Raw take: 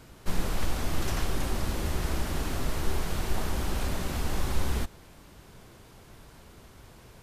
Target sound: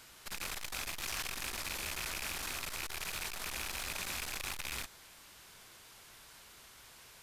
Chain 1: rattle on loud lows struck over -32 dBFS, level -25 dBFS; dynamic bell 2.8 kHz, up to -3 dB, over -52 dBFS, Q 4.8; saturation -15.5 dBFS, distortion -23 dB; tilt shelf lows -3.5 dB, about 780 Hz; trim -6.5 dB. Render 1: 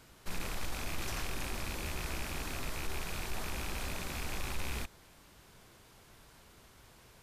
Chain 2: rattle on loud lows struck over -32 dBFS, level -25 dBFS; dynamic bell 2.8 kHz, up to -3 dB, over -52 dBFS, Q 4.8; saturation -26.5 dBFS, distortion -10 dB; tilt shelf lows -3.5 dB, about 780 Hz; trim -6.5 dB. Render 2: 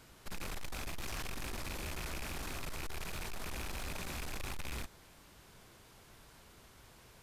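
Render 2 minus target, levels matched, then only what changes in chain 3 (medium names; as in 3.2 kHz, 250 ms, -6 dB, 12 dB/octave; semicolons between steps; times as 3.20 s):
1 kHz band +2.5 dB
change: tilt shelf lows -10.5 dB, about 780 Hz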